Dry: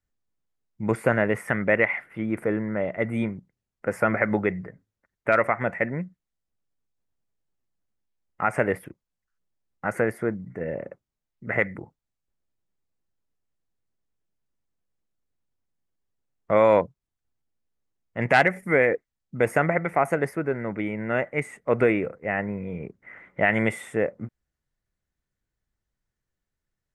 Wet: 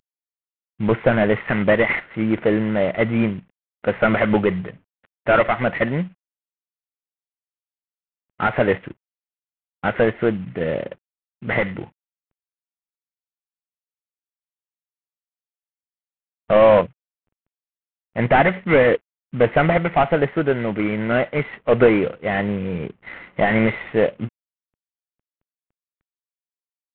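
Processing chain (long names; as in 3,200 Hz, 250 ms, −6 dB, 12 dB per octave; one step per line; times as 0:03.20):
variable-slope delta modulation 16 kbit/s
level +8 dB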